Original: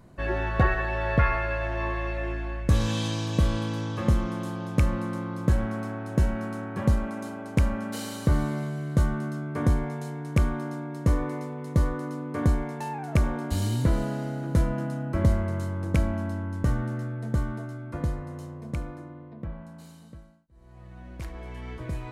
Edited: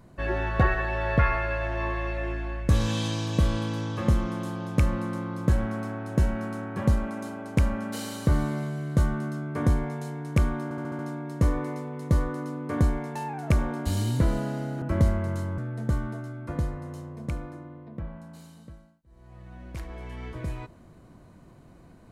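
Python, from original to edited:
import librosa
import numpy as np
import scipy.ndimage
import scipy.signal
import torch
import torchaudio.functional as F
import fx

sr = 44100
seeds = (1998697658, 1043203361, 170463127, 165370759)

y = fx.edit(x, sr, fx.stutter(start_s=10.64, slice_s=0.07, count=6),
    fx.cut(start_s=14.47, length_s=0.59),
    fx.cut(start_s=15.82, length_s=1.21), tone=tone)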